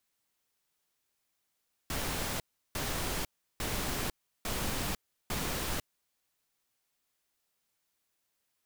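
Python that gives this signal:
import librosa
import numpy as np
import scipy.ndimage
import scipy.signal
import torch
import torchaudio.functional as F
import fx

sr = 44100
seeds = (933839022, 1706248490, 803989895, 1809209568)

y = fx.noise_burst(sr, seeds[0], colour='pink', on_s=0.5, off_s=0.35, bursts=5, level_db=-34.0)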